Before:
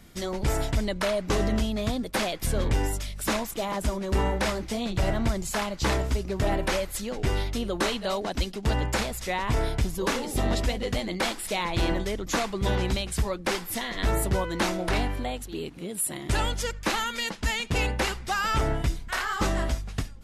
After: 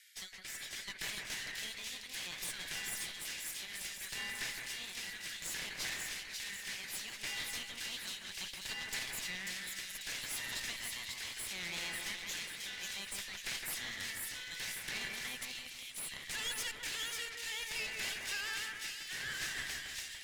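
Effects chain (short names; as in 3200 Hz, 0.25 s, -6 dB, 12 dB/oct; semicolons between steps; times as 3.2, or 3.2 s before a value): steep high-pass 1600 Hz 72 dB/oct; limiter -27 dBFS, peak gain reduction 11 dB; rotary speaker horn 0.65 Hz; one-sided clip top -49 dBFS; split-band echo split 2500 Hz, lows 0.162 s, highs 0.541 s, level -3 dB; gain +1 dB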